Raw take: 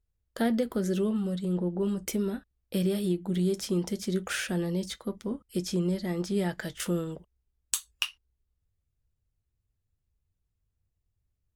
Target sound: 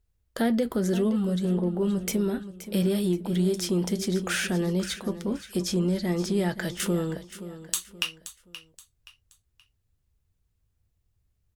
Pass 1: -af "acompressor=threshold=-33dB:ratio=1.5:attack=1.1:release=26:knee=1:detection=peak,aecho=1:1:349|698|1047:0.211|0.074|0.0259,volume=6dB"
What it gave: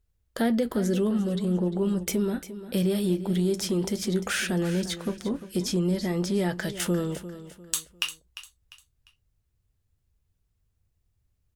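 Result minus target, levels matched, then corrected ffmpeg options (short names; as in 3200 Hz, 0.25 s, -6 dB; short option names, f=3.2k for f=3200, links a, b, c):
echo 0.176 s early
-af "acompressor=threshold=-33dB:ratio=1.5:attack=1.1:release=26:knee=1:detection=peak,aecho=1:1:525|1050|1575:0.211|0.074|0.0259,volume=6dB"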